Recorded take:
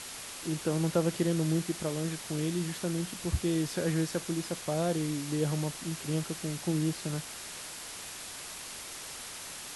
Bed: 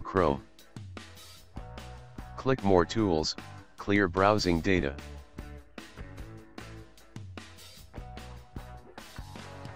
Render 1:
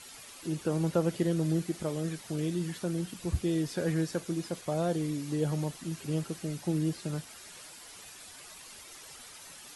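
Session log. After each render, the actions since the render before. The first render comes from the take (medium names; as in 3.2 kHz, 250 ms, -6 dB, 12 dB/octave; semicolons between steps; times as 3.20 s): noise reduction 10 dB, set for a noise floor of -43 dBFS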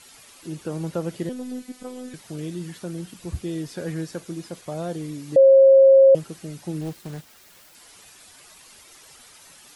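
1.29–2.14 s: robot voice 252 Hz; 5.36–6.15 s: bleep 539 Hz -8.5 dBFS; 6.81–7.75 s: self-modulated delay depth 0.52 ms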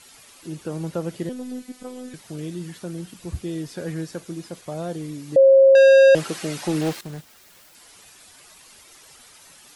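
5.75–7.01 s: overdrive pedal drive 22 dB, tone 4.6 kHz, clips at -8 dBFS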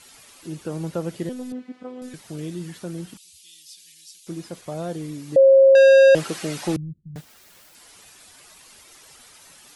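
1.52–2.02 s: band-pass 110–2400 Hz; 3.17–4.27 s: inverse Chebyshev high-pass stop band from 1.5 kHz; 6.76–7.16 s: inverse Chebyshev low-pass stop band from 950 Hz, stop band 80 dB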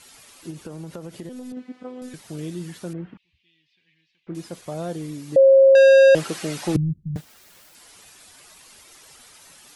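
0.50–1.57 s: compression 12:1, threshold -31 dBFS; 2.93–4.35 s: low-pass 2.2 kHz 24 dB/octave; 6.75–7.17 s: bass shelf 350 Hz +12 dB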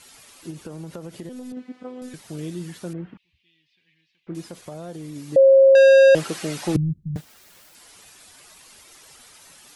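4.46–5.16 s: compression, threshold -31 dBFS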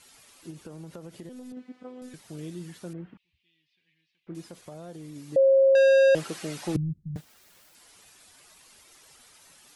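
trim -6.5 dB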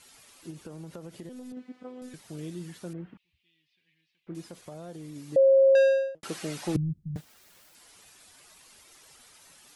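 5.69–6.23 s: studio fade out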